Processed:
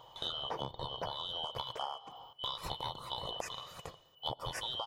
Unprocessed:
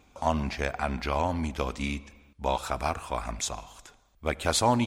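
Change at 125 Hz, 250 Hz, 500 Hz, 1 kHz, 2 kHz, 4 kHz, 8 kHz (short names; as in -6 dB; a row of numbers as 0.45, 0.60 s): -15.5, -22.0, -13.5, -11.0, -15.0, +0.5, -17.0 dB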